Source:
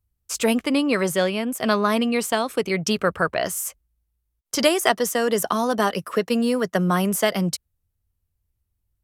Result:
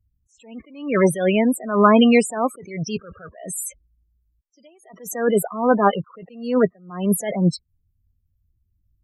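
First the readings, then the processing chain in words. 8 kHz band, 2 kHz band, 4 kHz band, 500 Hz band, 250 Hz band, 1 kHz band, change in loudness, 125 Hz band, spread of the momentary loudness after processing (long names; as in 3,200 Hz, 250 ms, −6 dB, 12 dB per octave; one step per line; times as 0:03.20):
−3.0 dB, −3.0 dB, −6.0 dB, +1.5 dB, +2.5 dB, +1.5 dB, +2.5 dB, +2.5 dB, 17 LU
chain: spectral peaks only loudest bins 16
level that may rise only so fast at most 110 dB per second
level +8.5 dB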